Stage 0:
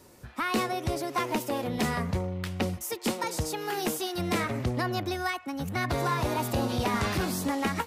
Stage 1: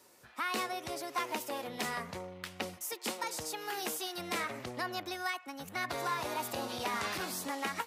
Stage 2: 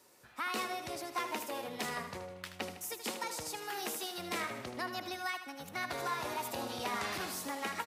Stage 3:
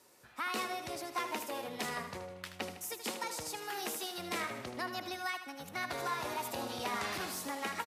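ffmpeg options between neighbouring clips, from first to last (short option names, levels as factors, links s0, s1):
-af "highpass=f=730:p=1,volume=0.668"
-af "aecho=1:1:78|156|234|312|390|468:0.316|0.168|0.0888|0.0471|0.025|0.0132,volume=0.794"
-af "aresample=32000,aresample=44100"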